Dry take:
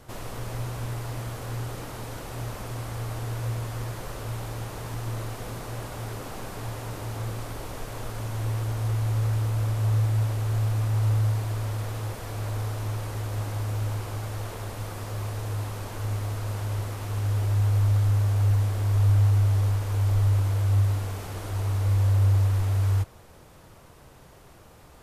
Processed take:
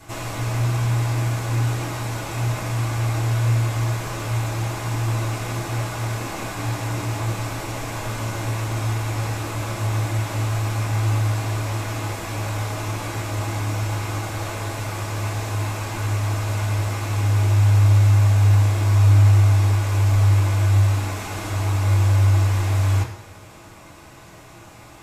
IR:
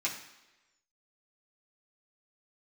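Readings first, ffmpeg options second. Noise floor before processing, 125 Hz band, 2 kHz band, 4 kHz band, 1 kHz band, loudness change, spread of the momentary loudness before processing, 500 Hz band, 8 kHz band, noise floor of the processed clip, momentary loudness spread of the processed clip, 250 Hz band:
−51 dBFS, +5.5 dB, +11.0 dB, +9.0 dB, +9.0 dB, +6.0 dB, 13 LU, +6.5 dB, +9.0 dB, −44 dBFS, 12 LU, +8.5 dB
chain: -filter_complex "[1:a]atrim=start_sample=2205[link_01];[0:a][link_01]afir=irnorm=-1:irlink=0,volume=5dB"

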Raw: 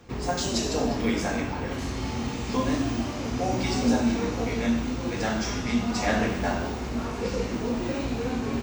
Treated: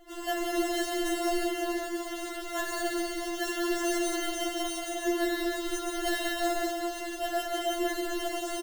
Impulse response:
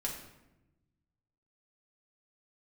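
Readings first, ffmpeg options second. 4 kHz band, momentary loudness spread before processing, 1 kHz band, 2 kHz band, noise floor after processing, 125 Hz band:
−0.5 dB, 6 LU, −2.0 dB, −1.0 dB, −38 dBFS, below −30 dB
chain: -af "acrusher=samples=37:mix=1:aa=0.000001,aecho=1:1:180|315|416.2|492.2|549.1:0.631|0.398|0.251|0.158|0.1,afftfilt=real='re*4*eq(mod(b,16),0)':imag='im*4*eq(mod(b,16),0)':win_size=2048:overlap=0.75"

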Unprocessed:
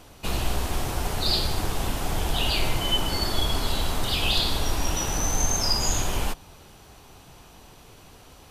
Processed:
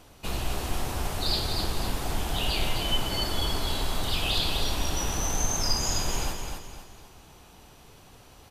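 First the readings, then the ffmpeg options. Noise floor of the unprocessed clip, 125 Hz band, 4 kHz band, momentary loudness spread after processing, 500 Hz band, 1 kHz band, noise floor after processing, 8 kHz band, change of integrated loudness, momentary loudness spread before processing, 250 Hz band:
−50 dBFS, −3.0 dB, −2.5 dB, 8 LU, −2.5 dB, −3.0 dB, −52 dBFS, −3.0 dB, −3.0 dB, 7 LU, −3.0 dB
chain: -af "aecho=1:1:255|510|765|1020|1275:0.531|0.202|0.0767|0.0291|0.0111,volume=-4dB"

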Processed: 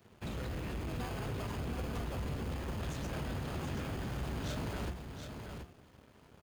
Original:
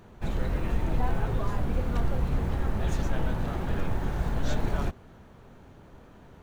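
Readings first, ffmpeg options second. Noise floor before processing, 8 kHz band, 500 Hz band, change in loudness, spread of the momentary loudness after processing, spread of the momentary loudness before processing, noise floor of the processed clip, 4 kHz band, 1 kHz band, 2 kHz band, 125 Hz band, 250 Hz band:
−51 dBFS, can't be measured, −7.0 dB, −9.0 dB, 7 LU, 2 LU, −61 dBFS, −1.5 dB, −8.0 dB, −5.5 dB, −8.5 dB, −7.0 dB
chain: -filter_complex "[0:a]highpass=frequency=60:width=0.5412,highpass=frequency=60:width=1.3066,equalizer=frequency=3500:width_type=o:width=0.77:gain=2,bandreject=frequency=178.2:width_type=h:width=4,bandreject=frequency=356.4:width_type=h:width=4,bandreject=frequency=534.6:width_type=h:width=4,bandreject=frequency=712.8:width_type=h:width=4,bandreject=frequency=891:width_type=h:width=4,bandreject=frequency=1069.2:width_type=h:width=4,bandreject=frequency=1247.4:width_type=h:width=4,bandreject=frequency=1425.6:width_type=h:width=4,bandreject=frequency=1603.8:width_type=h:width=4,bandreject=frequency=1782:width_type=h:width=4,bandreject=frequency=1960.2:width_type=h:width=4,bandreject=frequency=2138.4:width_type=h:width=4,bandreject=frequency=2316.6:width_type=h:width=4,bandreject=frequency=2494.8:width_type=h:width=4,bandreject=frequency=2673:width_type=h:width=4,bandreject=frequency=2851.2:width_type=h:width=4,bandreject=frequency=3029.4:width_type=h:width=4,bandreject=frequency=3207.6:width_type=h:width=4,bandreject=frequency=3385.8:width_type=h:width=4,bandreject=frequency=3564:width_type=h:width=4,bandreject=frequency=3742.2:width_type=h:width=4,bandreject=frequency=3920.4:width_type=h:width=4,bandreject=frequency=4098.6:width_type=h:width=4,bandreject=frequency=4276.8:width_type=h:width=4,bandreject=frequency=4455:width_type=h:width=4,bandreject=frequency=4633.2:width_type=h:width=4,bandreject=frequency=4811.4:width_type=h:width=4,volume=32.5dB,asoftclip=hard,volume=-32.5dB,acrossover=split=460|1100[link_01][link_02][link_03];[link_02]acrusher=samples=23:mix=1:aa=0.000001[link_04];[link_01][link_04][link_03]amix=inputs=3:normalize=0,aeval=exprs='sgn(val(0))*max(abs(val(0))-0.00178,0)':channel_layout=same,aecho=1:1:728:0.473,volume=-2.5dB"

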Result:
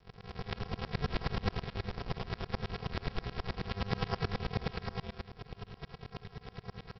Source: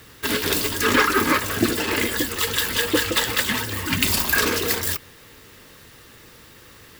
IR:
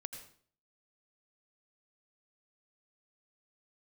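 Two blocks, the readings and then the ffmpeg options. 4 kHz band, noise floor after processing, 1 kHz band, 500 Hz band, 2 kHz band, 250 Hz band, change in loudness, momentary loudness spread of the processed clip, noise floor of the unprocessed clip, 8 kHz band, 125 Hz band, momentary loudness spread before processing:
−21.0 dB, −60 dBFS, −15.0 dB, −15.5 dB, −22.0 dB, −15.5 dB, −19.0 dB, 12 LU, −48 dBFS, below −40 dB, −4.5 dB, 5 LU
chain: -filter_complex "[0:a]acompressor=threshold=-39dB:ratio=2,asubboost=boost=7:cutoff=130,highpass=frequency=100:width=0.5412,highpass=frequency=100:width=1.3066,aresample=11025,acrusher=samples=37:mix=1:aa=0.000001,aresample=44100,acompressor=mode=upward:threshold=-42dB:ratio=2.5,lowshelf=frequency=310:gain=-6.5,asplit=2[link_01][link_02];[link_02]aecho=0:1:134.1|218.7|291.5:1|0.562|0.794[link_03];[link_01][link_03]amix=inputs=2:normalize=0,aeval=exprs='val(0)*pow(10,-26*if(lt(mod(-9.4*n/s,1),2*abs(-9.4)/1000),1-mod(-9.4*n/s,1)/(2*abs(-9.4)/1000),(mod(-9.4*n/s,1)-2*abs(-9.4)/1000)/(1-2*abs(-9.4)/1000))/20)':channel_layout=same,volume=6dB"

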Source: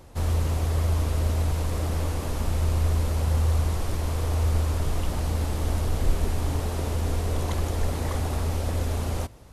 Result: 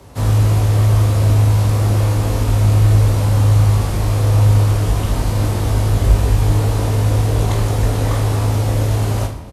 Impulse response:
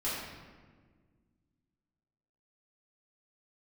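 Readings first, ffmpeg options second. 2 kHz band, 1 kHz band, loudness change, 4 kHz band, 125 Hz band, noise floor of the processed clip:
+9.0 dB, +9.5 dB, +11.5 dB, +9.0 dB, +13.0 dB, −22 dBFS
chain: -filter_complex "[0:a]afreqshift=24,aecho=1:1:20|45|76.25|115.3|164.1:0.631|0.398|0.251|0.158|0.1,asplit=2[link_01][link_02];[1:a]atrim=start_sample=2205[link_03];[link_02][link_03]afir=irnorm=-1:irlink=0,volume=-13dB[link_04];[link_01][link_04]amix=inputs=2:normalize=0,volume=5dB"

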